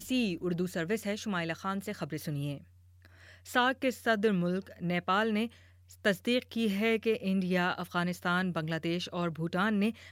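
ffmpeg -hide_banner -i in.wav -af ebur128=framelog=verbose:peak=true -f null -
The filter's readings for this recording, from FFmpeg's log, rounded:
Integrated loudness:
  I:         -31.5 LUFS
  Threshold: -42.0 LUFS
Loudness range:
  LRA:         3.7 LU
  Threshold: -51.8 LUFS
  LRA low:   -34.5 LUFS
  LRA high:  -30.8 LUFS
True peak:
  Peak:      -12.9 dBFS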